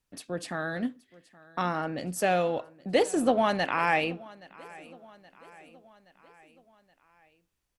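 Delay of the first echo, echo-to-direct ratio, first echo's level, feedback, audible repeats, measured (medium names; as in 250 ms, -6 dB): 823 ms, -20.5 dB, -22.0 dB, 55%, 3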